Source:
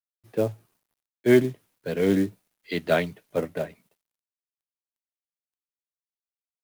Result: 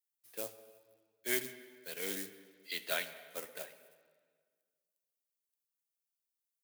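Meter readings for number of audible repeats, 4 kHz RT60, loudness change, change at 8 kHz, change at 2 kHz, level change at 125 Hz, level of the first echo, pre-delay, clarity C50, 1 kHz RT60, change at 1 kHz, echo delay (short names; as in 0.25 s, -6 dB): none, 1.5 s, -14.0 dB, +4.0 dB, -8.0 dB, -29.5 dB, none, 10 ms, 12.0 dB, 1.6 s, -14.0 dB, none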